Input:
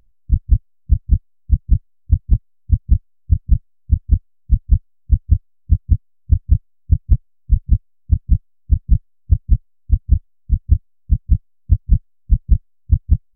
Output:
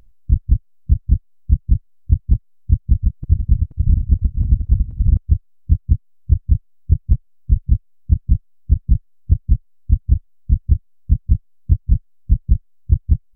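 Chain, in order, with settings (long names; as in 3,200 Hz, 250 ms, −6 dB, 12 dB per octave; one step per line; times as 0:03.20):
0:02.76–0:05.17: feedback delay that plays each chunk backwards 239 ms, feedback 52%, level −5 dB
downward compressor, threshold −17 dBFS, peak gain reduction 11.5 dB
level +7.5 dB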